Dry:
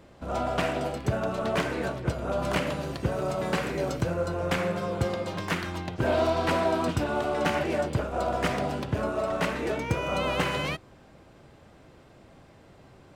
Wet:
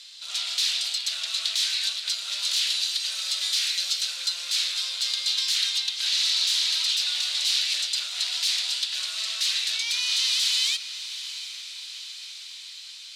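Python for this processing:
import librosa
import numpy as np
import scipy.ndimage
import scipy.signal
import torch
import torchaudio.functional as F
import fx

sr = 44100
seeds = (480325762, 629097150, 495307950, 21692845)

y = fx.tilt_eq(x, sr, slope=4.0)
y = fx.fold_sine(y, sr, drive_db=16, ceiling_db=-12.0)
y = fx.ladder_bandpass(y, sr, hz=4400.0, resonance_pct=60)
y = fx.echo_diffused(y, sr, ms=748, feedback_pct=64, wet_db=-12.5)
y = F.gain(torch.from_numpy(y), 3.0).numpy()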